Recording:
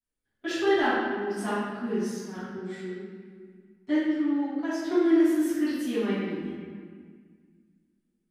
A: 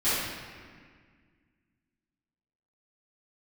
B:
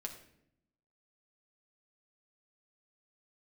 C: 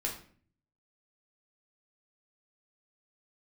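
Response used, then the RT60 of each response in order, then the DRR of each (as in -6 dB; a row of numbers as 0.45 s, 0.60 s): A; 1.8 s, 0.70 s, 0.50 s; -16.5 dB, 2.5 dB, -1.5 dB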